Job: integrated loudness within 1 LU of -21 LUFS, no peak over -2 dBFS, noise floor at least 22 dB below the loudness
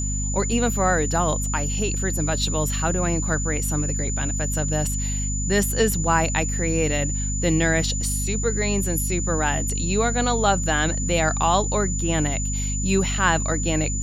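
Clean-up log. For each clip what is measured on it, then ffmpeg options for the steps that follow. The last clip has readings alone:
hum 50 Hz; highest harmonic 250 Hz; hum level -24 dBFS; steady tone 7 kHz; tone level -28 dBFS; loudness -22.5 LUFS; peak level -5.5 dBFS; loudness target -21.0 LUFS
-> -af "bandreject=f=50:t=h:w=6,bandreject=f=100:t=h:w=6,bandreject=f=150:t=h:w=6,bandreject=f=200:t=h:w=6,bandreject=f=250:t=h:w=6"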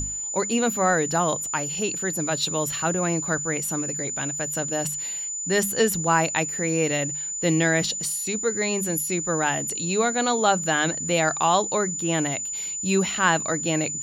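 hum not found; steady tone 7 kHz; tone level -28 dBFS
-> -af "bandreject=f=7000:w=30"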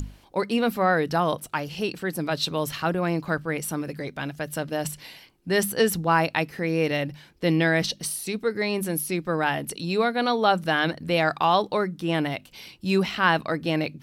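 steady tone not found; loudness -25.0 LUFS; peak level -6.5 dBFS; loudness target -21.0 LUFS
-> -af "volume=1.58"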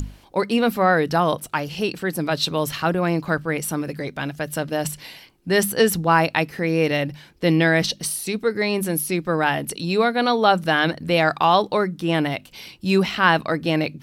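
loudness -21.0 LUFS; peak level -2.5 dBFS; noise floor -50 dBFS

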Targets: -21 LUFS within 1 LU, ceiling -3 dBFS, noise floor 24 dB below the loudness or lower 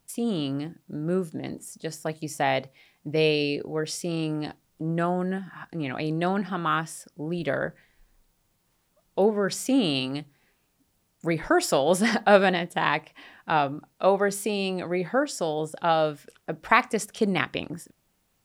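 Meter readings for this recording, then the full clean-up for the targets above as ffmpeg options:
loudness -26.5 LUFS; peak level -3.5 dBFS; loudness target -21.0 LUFS
-> -af "volume=1.88,alimiter=limit=0.708:level=0:latency=1"

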